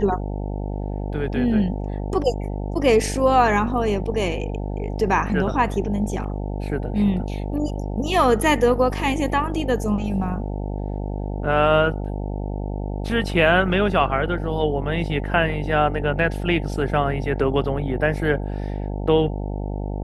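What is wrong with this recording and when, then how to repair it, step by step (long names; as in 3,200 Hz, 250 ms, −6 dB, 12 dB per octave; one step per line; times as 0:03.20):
mains buzz 50 Hz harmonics 18 −27 dBFS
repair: hum removal 50 Hz, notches 18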